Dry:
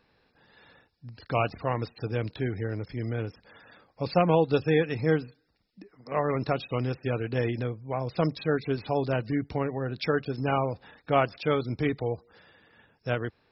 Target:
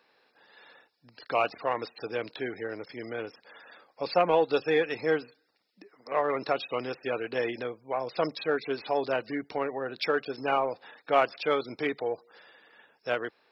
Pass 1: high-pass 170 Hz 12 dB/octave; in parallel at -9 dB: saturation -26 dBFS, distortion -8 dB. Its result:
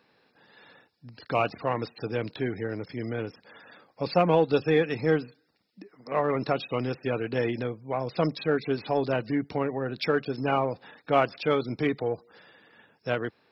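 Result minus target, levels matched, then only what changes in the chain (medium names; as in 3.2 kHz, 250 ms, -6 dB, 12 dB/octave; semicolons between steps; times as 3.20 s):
125 Hz band +12.0 dB
change: high-pass 420 Hz 12 dB/octave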